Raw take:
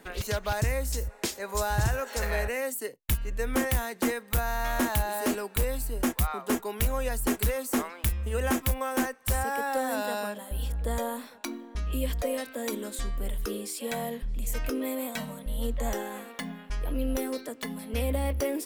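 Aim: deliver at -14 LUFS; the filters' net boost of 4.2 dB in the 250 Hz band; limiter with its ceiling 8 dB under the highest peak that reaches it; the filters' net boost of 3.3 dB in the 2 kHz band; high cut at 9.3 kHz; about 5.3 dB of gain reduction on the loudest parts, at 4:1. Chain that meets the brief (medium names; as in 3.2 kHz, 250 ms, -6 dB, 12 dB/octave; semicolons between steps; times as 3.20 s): low-pass 9.3 kHz; peaking EQ 250 Hz +4.5 dB; peaking EQ 2 kHz +4 dB; compression 4:1, threshold -26 dBFS; trim +21 dB; peak limiter -4.5 dBFS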